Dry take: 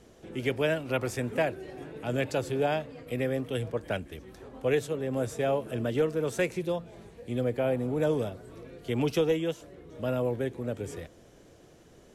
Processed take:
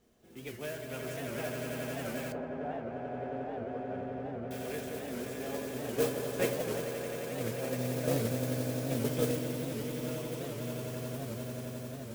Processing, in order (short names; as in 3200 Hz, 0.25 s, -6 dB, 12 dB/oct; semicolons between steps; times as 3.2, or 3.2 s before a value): swelling echo 88 ms, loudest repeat 8, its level -6 dB; gate -20 dBFS, range -8 dB; reverb RT60 1.0 s, pre-delay 5 ms, DRR 4.5 dB; modulation noise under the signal 12 dB; 2.32–4.51 LPF 1300 Hz 12 dB/oct; resonator 240 Hz, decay 0.16 s, harmonics odd, mix 60%; record warp 78 rpm, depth 160 cents